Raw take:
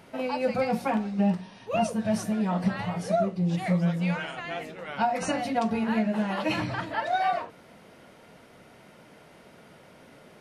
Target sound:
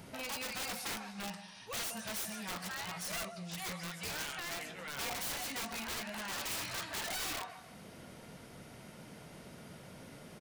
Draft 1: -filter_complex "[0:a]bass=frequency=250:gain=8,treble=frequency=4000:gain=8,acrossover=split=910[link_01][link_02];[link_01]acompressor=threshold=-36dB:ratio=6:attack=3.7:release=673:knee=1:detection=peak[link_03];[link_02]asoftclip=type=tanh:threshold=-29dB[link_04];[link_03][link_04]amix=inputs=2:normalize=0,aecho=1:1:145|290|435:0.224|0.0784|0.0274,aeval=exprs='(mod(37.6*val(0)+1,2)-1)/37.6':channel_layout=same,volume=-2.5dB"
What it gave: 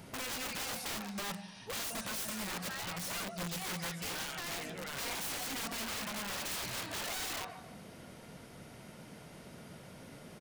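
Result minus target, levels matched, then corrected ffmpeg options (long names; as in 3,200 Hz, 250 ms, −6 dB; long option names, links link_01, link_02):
downward compressor: peak gain reduction −6.5 dB
-filter_complex "[0:a]bass=frequency=250:gain=8,treble=frequency=4000:gain=8,acrossover=split=910[link_01][link_02];[link_01]acompressor=threshold=-44dB:ratio=6:attack=3.7:release=673:knee=1:detection=peak[link_03];[link_02]asoftclip=type=tanh:threshold=-29dB[link_04];[link_03][link_04]amix=inputs=2:normalize=0,aecho=1:1:145|290|435:0.224|0.0784|0.0274,aeval=exprs='(mod(37.6*val(0)+1,2)-1)/37.6':channel_layout=same,volume=-2.5dB"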